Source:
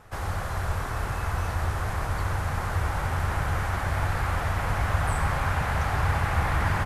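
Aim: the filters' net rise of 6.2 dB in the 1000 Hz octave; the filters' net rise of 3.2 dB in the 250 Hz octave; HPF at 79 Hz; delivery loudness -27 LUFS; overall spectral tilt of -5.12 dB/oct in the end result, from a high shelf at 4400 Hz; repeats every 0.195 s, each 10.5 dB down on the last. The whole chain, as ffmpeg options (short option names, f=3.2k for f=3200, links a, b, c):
-af "highpass=79,equalizer=f=250:t=o:g=5,equalizer=f=1k:t=o:g=8,highshelf=f=4.4k:g=-8,aecho=1:1:195|390|585:0.299|0.0896|0.0269,volume=-1.5dB"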